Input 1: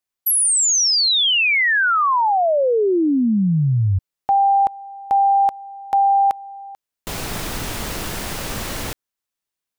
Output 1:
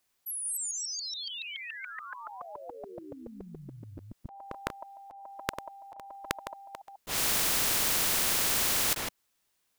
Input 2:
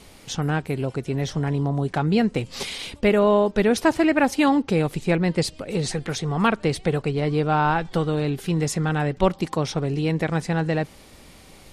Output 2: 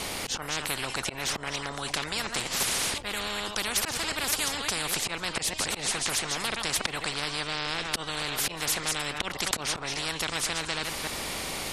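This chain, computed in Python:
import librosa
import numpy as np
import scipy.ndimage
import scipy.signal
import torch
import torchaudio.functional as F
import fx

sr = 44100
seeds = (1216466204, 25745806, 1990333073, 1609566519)

y = fx.reverse_delay(x, sr, ms=142, wet_db=-14.0)
y = fx.auto_swell(y, sr, attack_ms=227.0)
y = fx.spectral_comp(y, sr, ratio=10.0)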